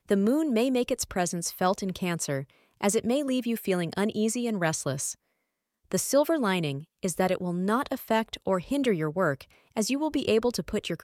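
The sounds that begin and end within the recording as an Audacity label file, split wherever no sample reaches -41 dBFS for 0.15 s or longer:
2.810000	5.130000	sound
5.920000	6.830000	sound
7.030000	9.430000	sound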